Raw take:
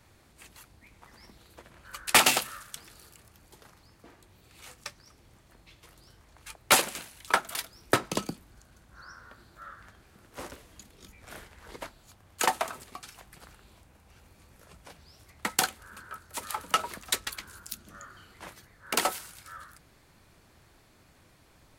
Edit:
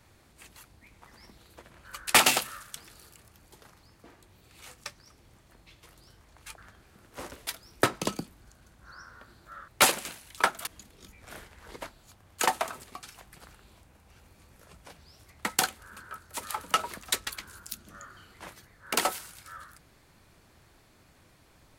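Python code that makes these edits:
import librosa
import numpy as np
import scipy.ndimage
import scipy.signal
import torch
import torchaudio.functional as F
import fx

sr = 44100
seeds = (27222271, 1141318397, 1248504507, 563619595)

y = fx.edit(x, sr, fx.swap(start_s=6.58, length_s=0.99, other_s=9.78, other_length_s=0.89), tone=tone)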